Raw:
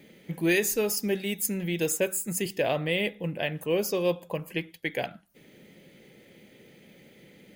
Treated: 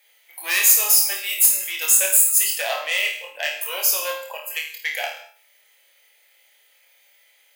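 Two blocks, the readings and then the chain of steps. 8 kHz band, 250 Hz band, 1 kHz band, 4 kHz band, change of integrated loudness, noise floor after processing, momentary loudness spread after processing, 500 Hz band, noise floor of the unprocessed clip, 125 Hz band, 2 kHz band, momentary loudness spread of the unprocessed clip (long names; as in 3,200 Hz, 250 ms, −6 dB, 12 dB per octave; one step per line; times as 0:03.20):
+15.5 dB, below −20 dB, +5.5 dB, +10.5 dB, +11.0 dB, −59 dBFS, 15 LU, −5.5 dB, −56 dBFS, below −25 dB, +8.0 dB, 9 LU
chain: sine wavefolder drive 4 dB, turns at −13 dBFS
noise reduction from a noise print of the clip's start 11 dB
inverse Chebyshev high-pass filter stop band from 220 Hz, stop band 60 dB
high-shelf EQ 6,200 Hz +11.5 dB
hard clipping −6.5 dBFS, distortion −23 dB
flutter between parallel walls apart 4.5 metres, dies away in 0.38 s
reverb whose tail is shaped and stops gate 250 ms falling, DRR 5.5 dB
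level −2 dB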